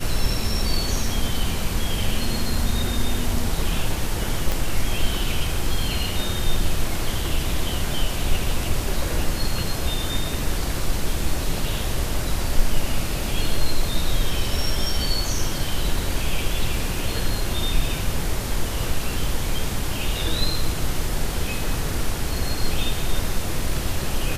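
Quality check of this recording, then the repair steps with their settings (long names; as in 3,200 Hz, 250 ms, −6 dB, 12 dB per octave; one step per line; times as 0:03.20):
0:04.52: click −8 dBFS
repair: click removal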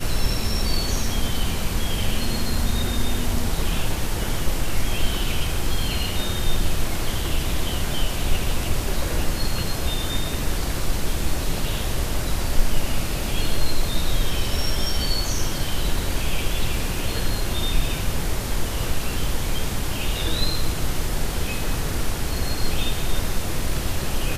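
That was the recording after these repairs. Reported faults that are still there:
0:04.52: click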